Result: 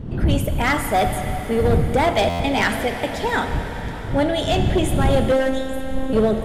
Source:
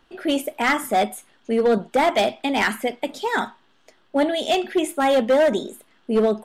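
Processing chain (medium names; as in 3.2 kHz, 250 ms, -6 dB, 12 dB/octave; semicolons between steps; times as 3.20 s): wind noise 130 Hz -22 dBFS; vibrato 12 Hz 12 cents; in parallel at +2.5 dB: peak limiter -12.5 dBFS, peak gain reduction 11.5 dB; on the sum: saturation -2 dBFS, distortion -22 dB; on a send at -6 dB: reverberation RT60 5.6 s, pre-delay 33 ms; 5.32–6.13 s: on the sum: robot voice 264 Hz; buffer glitch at 2.29 s, samples 512, times 8; trim -6 dB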